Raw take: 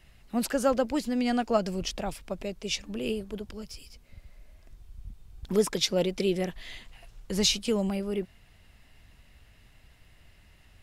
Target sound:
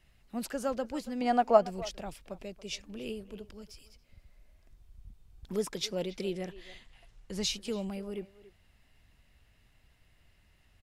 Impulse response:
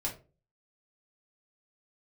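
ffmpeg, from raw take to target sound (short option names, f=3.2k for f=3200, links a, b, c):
-filter_complex "[0:a]asettb=1/sr,asplit=3[a][b][c];[a]atrim=end=1.214[d];[b]atrim=start=1.21:end=1.63,asetpts=PTS-STARTPTS,afade=t=in:d=0.004:c=qsin,afade=t=out:st=0.416:d=0.004:c=qsin,equalizer=f=790:t=o:w=1.8:g=14[e];[c]atrim=start=1.626[f];[d][e]acrossfade=d=0.004:c1=hsin:c2=qsin[g];[g][f]acrossfade=d=0.004:c1=qsin:c2=hsin,asettb=1/sr,asplit=3[h][i][j];[h]atrim=end=6.334[k];[i]atrim=start=6.33:end=7.47,asetpts=PTS-STARTPTS,afade=t=in:d=0.004:c=qsin,afade=t=out:st=1.136:d=0.004:c=qsin,lowpass=11k[l];[j]atrim=start=7.466[m];[k][l]acrossfade=d=0.004:c1=hsin:c2=qsin[n];[n][m]acrossfade=d=0.004:c1=qsin:c2=hsin,asplit=2[o][p];[p]adelay=280,highpass=300,lowpass=3.4k,asoftclip=type=hard:threshold=-9.5dB,volume=-16dB[q];[o][q]amix=inputs=2:normalize=0,volume=-8dB"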